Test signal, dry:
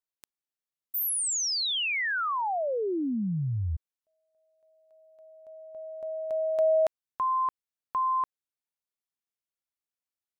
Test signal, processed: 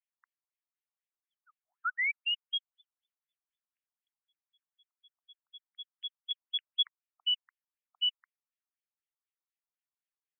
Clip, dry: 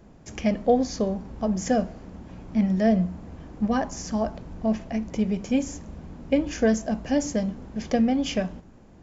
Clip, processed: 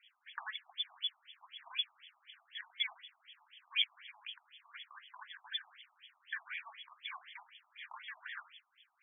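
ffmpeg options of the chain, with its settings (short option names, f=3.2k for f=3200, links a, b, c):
-filter_complex "[0:a]lowpass=f=3.4k:t=q:w=0.5098,lowpass=f=3.4k:t=q:w=0.6013,lowpass=f=3.4k:t=q:w=0.9,lowpass=f=3.4k:t=q:w=2.563,afreqshift=-4000,acrossover=split=3100[a][b];[b]acompressor=threshold=-26dB:ratio=4:attack=1:release=60[c];[a][c]amix=inputs=2:normalize=0,afftfilt=real='re*between(b*sr/1024,890*pow(2500/890,0.5+0.5*sin(2*PI*4*pts/sr))/1.41,890*pow(2500/890,0.5+0.5*sin(2*PI*4*pts/sr))*1.41)':imag='im*between(b*sr/1024,890*pow(2500/890,0.5+0.5*sin(2*PI*4*pts/sr))/1.41,890*pow(2500/890,0.5+0.5*sin(2*PI*4*pts/sr))*1.41)':win_size=1024:overlap=0.75"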